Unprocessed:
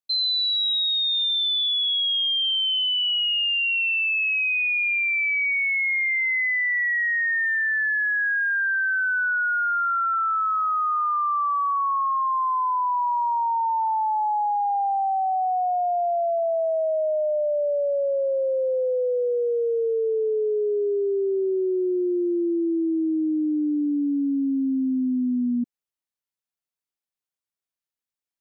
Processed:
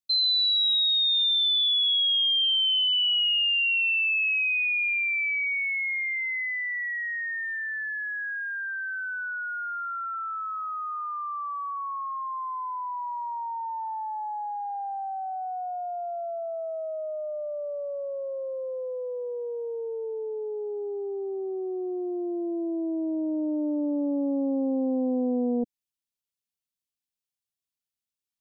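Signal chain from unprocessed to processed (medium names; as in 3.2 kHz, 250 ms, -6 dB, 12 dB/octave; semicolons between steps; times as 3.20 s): high-order bell 840 Hz -9.5 dB 2.8 oct; loudspeaker Doppler distortion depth 0.61 ms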